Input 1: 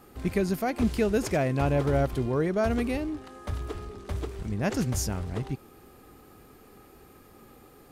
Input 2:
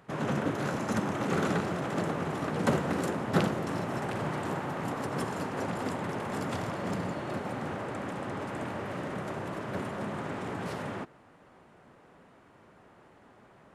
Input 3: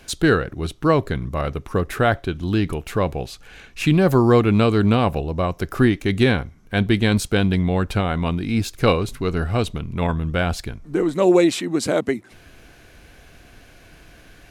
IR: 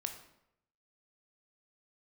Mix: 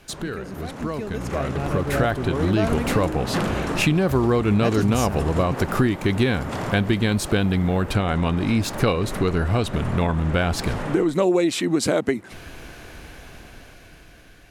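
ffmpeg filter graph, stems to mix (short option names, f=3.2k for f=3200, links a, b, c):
-filter_complex "[0:a]volume=-10dB[a];[1:a]aeval=exprs='0.237*sin(PI/2*2.51*val(0)/0.237)':c=same,volume=-15.5dB[b];[2:a]volume=-3.5dB[c];[b][c]amix=inputs=2:normalize=0,acompressor=threshold=-29dB:ratio=4,volume=0dB[d];[a][d]amix=inputs=2:normalize=0,dynaudnorm=f=370:g=9:m=11dB"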